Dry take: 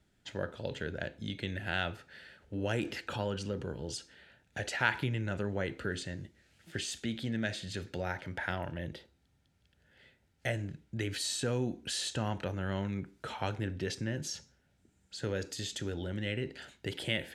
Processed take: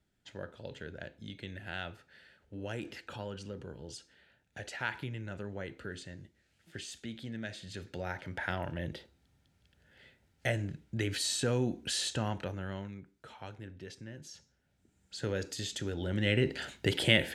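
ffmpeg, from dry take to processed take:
-af "volume=21dB,afade=t=in:st=7.53:d=1.39:silence=0.375837,afade=t=out:st=12:d=1.01:silence=0.223872,afade=t=in:st=14.31:d=0.85:silence=0.266073,afade=t=in:st=15.97:d=0.44:silence=0.421697"

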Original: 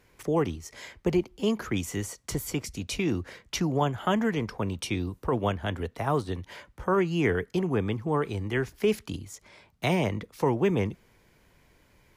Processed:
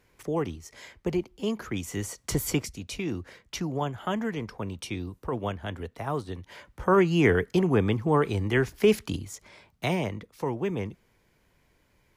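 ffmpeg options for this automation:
-af "volume=13dB,afade=t=in:st=1.82:d=0.7:silence=0.398107,afade=t=out:st=2.52:d=0.23:silence=0.354813,afade=t=in:st=6.48:d=0.47:silence=0.398107,afade=t=out:st=9.07:d=1.12:silence=0.354813"

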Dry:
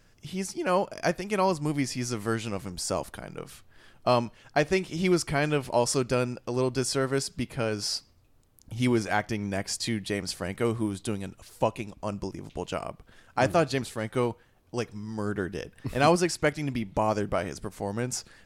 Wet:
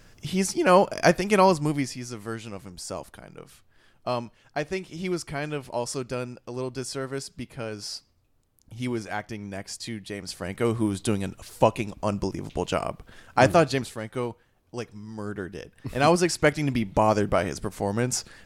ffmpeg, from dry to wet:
-af "volume=26.5dB,afade=t=out:st=1.34:d=0.66:silence=0.237137,afade=t=in:st=10.17:d=0.95:silence=0.281838,afade=t=out:st=13.42:d=0.63:silence=0.354813,afade=t=in:st=15.73:d=0.8:silence=0.398107"

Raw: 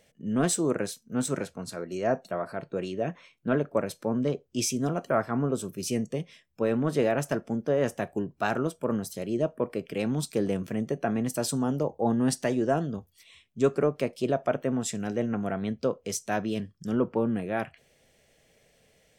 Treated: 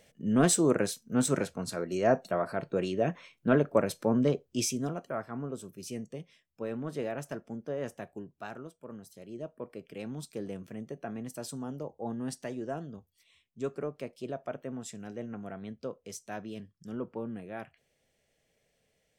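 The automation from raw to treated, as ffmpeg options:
-af "volume=8.5dB,afade=t=out:st=4.23:d=0.85:silence=0.266073,afade=t=out:st=7.9:d=0.87:silence=0.398107,afade=t=in:st=8.77:d=1.15:silence=0.446684"

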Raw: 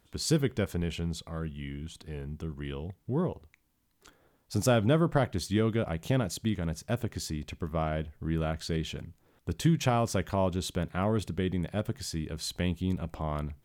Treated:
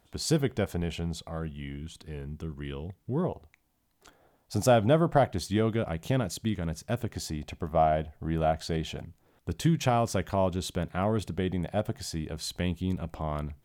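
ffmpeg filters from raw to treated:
-af "asetnsamples=n=441:p=0,asendcmd='1.77 equalizer g -0.5;3.24 equalizer g 8.5;5.76 equalizer g 1.5;7.14 equalizer g 12.5;9.05 equalizer g 3.5;11.28 equalizer g 9.5;12.38 equalizer g 2',equalizer=f=710:t=o:w=0.55:g=8"

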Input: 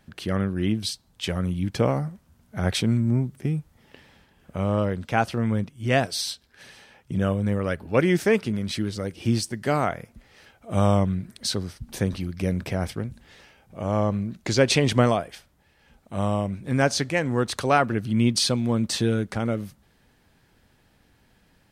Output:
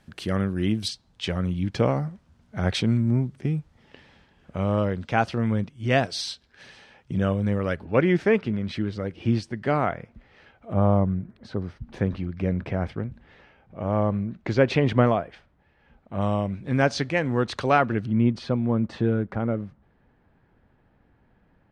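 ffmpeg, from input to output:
-af "asetnsamples=n=441:p=0,asendcmd='0.88 lowpass f 5400;7.85 lowpass f 2800;10.73 lowpass f 1200;11.62 lowpass f 2200;16.21 lowpass f 4100;18.06 lowpass f 1500',lowpass=11k"

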